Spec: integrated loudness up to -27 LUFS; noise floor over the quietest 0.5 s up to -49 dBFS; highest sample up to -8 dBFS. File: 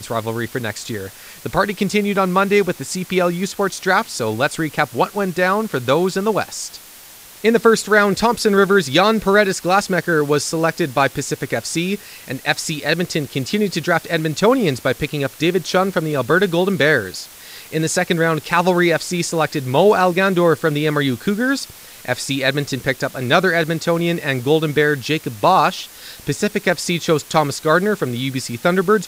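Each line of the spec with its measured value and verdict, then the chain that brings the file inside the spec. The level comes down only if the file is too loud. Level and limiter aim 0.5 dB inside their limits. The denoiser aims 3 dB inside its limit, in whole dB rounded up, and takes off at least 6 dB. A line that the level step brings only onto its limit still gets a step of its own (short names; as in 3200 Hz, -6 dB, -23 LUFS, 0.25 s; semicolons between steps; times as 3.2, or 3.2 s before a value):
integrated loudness -18.0 LUFS: fail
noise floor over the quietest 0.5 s -41 dBFS: fail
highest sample -1.5 dBFS: fail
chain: gain -9.5 dB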